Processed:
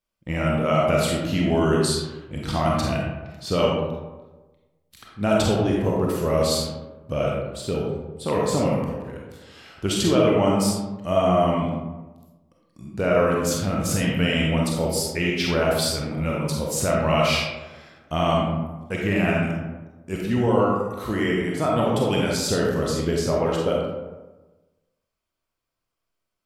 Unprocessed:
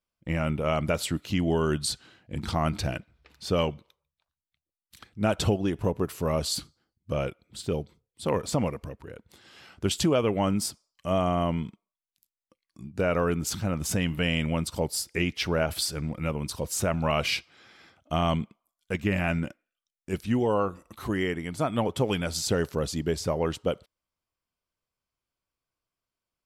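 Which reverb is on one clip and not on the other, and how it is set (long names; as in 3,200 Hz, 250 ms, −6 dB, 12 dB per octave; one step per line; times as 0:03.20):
comb and all-pass reverb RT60 1.2 s, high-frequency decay 0.45×, pre-delay 5 ms, DRR −3 dB
level +1 dB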